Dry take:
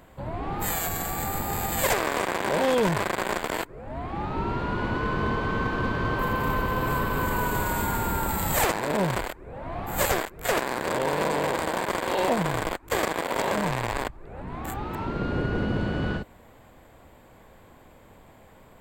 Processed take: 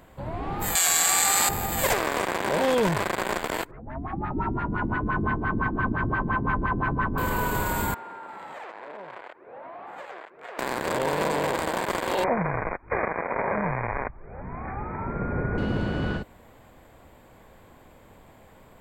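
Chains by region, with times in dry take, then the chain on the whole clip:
0:00.75–0:01.49: meter weighting curve ITU-R 468 + floating-point word with a short mantissa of 8 bits + envelope flattener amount 100%
0:03.71–0:07.18: parametric band 500 Hz −12.5 dB 0.62 octaves + auto-filter low-pass sine 5.8 Hz 280–2,000 Hz
0:07.94–0:10.59: band-pass filter 460–2,200 Hz + downward compressor, threshold −37 dBFS
0:12.24–0:15.58: linear-phase brick-wall low-pass 2,500 Hz + parametric band 310 Hz −6.5 dB 0.39 octaves
whole clip: no processing

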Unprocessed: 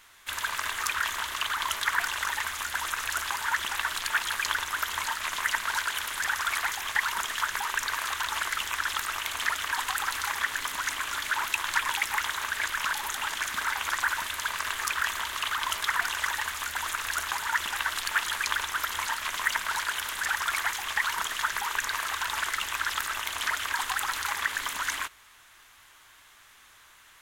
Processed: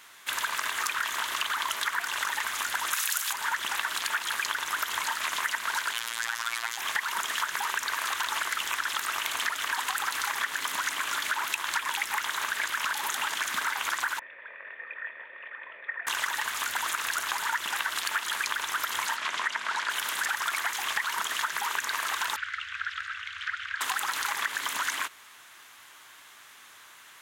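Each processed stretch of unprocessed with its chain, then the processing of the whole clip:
0:02.93–0:03.33: high-pass filter 220 Hz 6 dB per octave + spectral tilt +4 dB per octave
0:05.93–0:06.78: parametric band 4,600 Hz +4.5 dB 2 octaves + phases set to zero 116 Hz
0:14.19–0:16.07: formant resonators in series e + low-shelf EQ 180 Hz −6 dB + double-tracking delay 25 ms −11 dB
0:19.16–0:19.90: high-pass filter 130 Hz + high-frequency loss of the air 75 metres
0:22.36–0:23.81: Chebyshev band-stop filter 100–1,400 Hz, order 4 + head-to-tape spacing loss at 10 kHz 32 dB
whole clip: high-pass filter 160 Hz 12 dB per octave; downward compressor, threshold −30 dBFS; level +4 dB

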